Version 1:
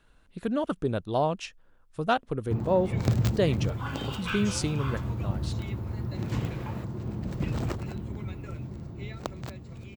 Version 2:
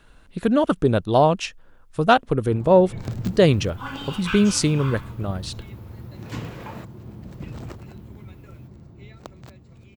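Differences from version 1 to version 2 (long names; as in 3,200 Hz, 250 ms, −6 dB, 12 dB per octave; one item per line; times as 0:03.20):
speech +9.5 dB
first sound −5.5 dB
second sound +4.0 dB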